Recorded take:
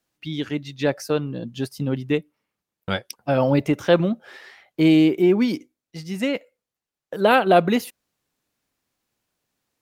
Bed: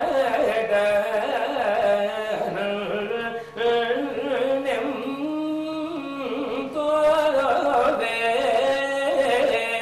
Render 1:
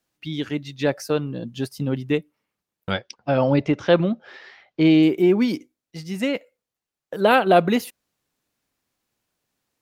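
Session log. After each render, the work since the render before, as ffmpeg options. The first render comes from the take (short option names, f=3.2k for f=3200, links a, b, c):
-filter_complex "[0:a]asettb=1/sr,asplit=3[a][b][c];[a]atrim=end=2.914[d];[b]atrim=start=2.91:end=5.03,asetpts=PTS-STARTPTS,afade=t=in:d=0.004:c=qsin,afade=t=out:st=2.116:d=0.004:c=qsin,lowpass=f=5.6k:w=0.5412,lowpass=f=5.6k:w=1.3066[e];[c]atrim=start=5.026[f];[d][e]acrossfade=d=0.004:c1=hsin:c2=qsin[g];[g][f]acrossfade=d=0.004:c1=qsin:c2=hsin"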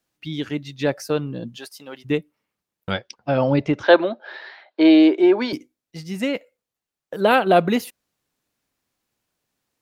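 -filter_complex "[0:a]asplit=3[a][b][c];[a]afade=t=out:st=1.55:d=0.02[d];[b]highpass=730,afade=t=in:st=1.55:d=0.02,afade=t=out:st=2.04:d=0.02[e];[c]afade=t=in:st=2.04:d=0.02[f];[d][e][f]amix=inputs=3:normalize=0,asettb=1/sr,asplit=3[g][h][i];[g]atrim=end=3.834[j];[h]atrim=start=3.83:end=5.53,asetpts=PTS-STARTPTS,afade=t=in:d=0.004:c=qsin,afade=t=out:st=1.696:d=0.004:c=qsin,highpass=f=300:w=0.5412,highpass=f=300:w=1.3066,equalizer=f=320:t=q:w=4:g=5,equalizer=f=630:t=q:w=4:g=9,equalizer=f=930:t=q:w=4:g=9,equalizer=f=1.6k:t=q:w=4:g=9,equalizer=f=4k:t=q:w=4:g=9,equalizer=f=5.8k:t=q:w=4:g=-6,lowpass=f=6.3k:w=0.5412,lowpass=f=6.3k:w=1.3066[k];[i]atrim=start=5.526[l];[j][k]acrossfade=d=0.004:c1=hsin:c2=qsin[m];[m][l]acrossfade=d=0.004:c1=qsin:c2=hsin"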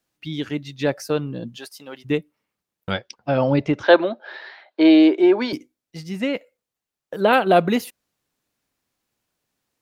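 -filter_complex "[0:a]asettb=1/sr,asplit=3[a][b][c];[a]atrim=end=6.094[d];[b]atrim=start=6.09:end=7.33,asetpts=PTS-STARTPTS,afade=t=in:d=0.004:c=qsin,afade=t=out:st=1.236:d=0.004:c=qsin,acrossover=split=4400[e][f];[f]acompressor=threshold=-49dB:ratio=4:attack=1:release=60[g];[e][g]amix=inputs=2:normalize=0[h];[c]atrim=start=7.326[i];[d][h]acrossfade=d=0.004:c1=hsin:c2=qsin[j];[j][i]acrossfade=d=0.004:c1=qsin:c2=hsin"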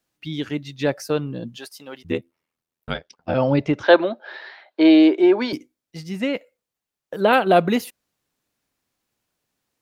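-filter_complex "[0:a]asettb=1/sr,asplit=3[a][b][c];[a]atrim=end=2.024[d];[b]atrim=start=2.02:end=3.35,asetpts=PTS-STARTPTS,afade=t=in:d=0.004:c=qsin,afade=t=out:st=1.326:d=0.004:c=qsin,aeval=exprs='val(0)*sin(2*PI*41*n/s)':c=same[e];[c]atrim=start=3.346[f];[d][e]acrossfade=d=0.004:c1=hsin:c2=qsin[g];[g][f]acrossfade=d=0.004:c1=qsin:c2=hsin"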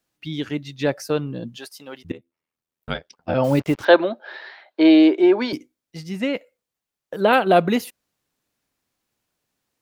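-filter_complex "[0:a]asettb=1/sr,asplit=3[a][b][c];[a]atrim=end=3.444[d];[b]atrim=start=3.44:end=3.85,asetpts=PTS-STARTPTS,afade=t=in:d=0.004:c=qsin,afade=t=out:st=0.406:d=0.004:c=qsin,acrusher=bits=5:mix=0:aa=0.5[e];[c]atrim=start=3.846[f];[d][e]acrossfade=d=0.004:c1=hsin:c2=qsin[g];[g][f]acrossfade=d=0.004:c1=qsin:c2=hsin,asplit=2[h][i];[h]atrim=end=2.12,asetpts=PTS-STARTPTS,afade=t=out:st=2.116:d=0.004:c=hsin:silence=0.112202[j];[i]atrim=start=2.12,asetpts=PTS-STARTPTS,afade=t=in:d=0.78:silence=0.112202[k];[j][k]concat=n=2:v=0:a=1"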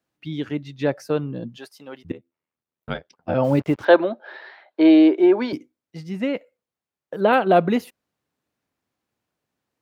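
-af "highpass=62,highshelf=f=2.9k:g=-10"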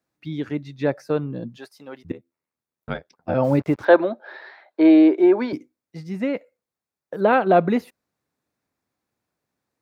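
-filter_complex "[0:a]acrossover=split=3900[a][b];[b]acompressor=threshold=-50dB:ratio=4:attack=1:release=60[c];[a][c]amix=inputs=2:normalize=0,equalizer=f=3k:w=5.2:g=-7.5"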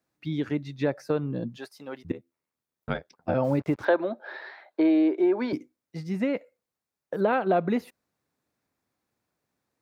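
-af "acompressor=threshold=-23dB:ratio=2.5"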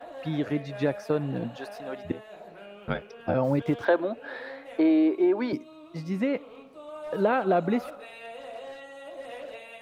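-filter_complex "[1:a]volume=-20dB[a];[0:a][a]amix=inputs=2:normalize=0"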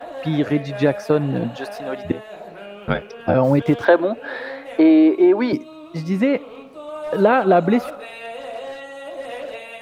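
-af "volume=9dB"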